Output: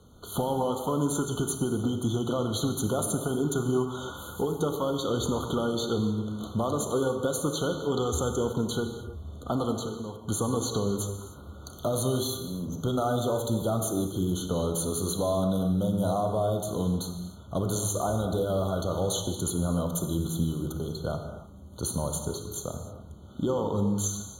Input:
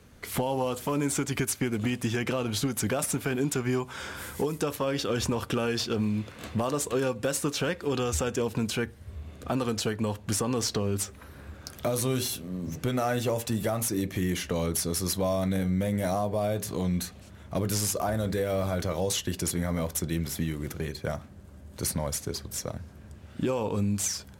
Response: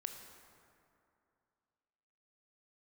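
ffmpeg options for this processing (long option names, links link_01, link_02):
-filter_complex "[0:a]asettb=1/sr,asplit=3[link_01][link_02][link_03];[link_01]atrim=end=9.754[link_04];[link_02]atrim=start=9.75:end=10.23,asetpts=PTS-STARTPTS,afade=type=in:duration=0.004:curve=qsin,afade=type=out:start_time=0.476:duration=0.004:curve=qsin,acompressor=threshold=-33dB:ratio=6[link_05];[link_03]atrim=start=10.226[link_06];[link_04][link_05]acrossfade=duration=0.004:curve1=hsin:curve2=qsin[link_07];[link_07][link_06]acrossfade=duration=0.004:curve1=qsin:curve2=hsin[link_08];[1:a]atrim=start_sample=2205,afade=type=out:start_time=0.31:duration=0.01,atrim=end_sample=14112,asetrate=36162,aresample=44100[link_09];[link_08][link_09]afir=irnorm=-1:irlink=0,afftfilt=real='re*eq(mod(floor(b*sr/1024/1500),2),0)':imag='im*eq(mod(floor(b*sr/1024/1500),2),0)':win_size=1024:overlap=0.75,volume=2.5dB"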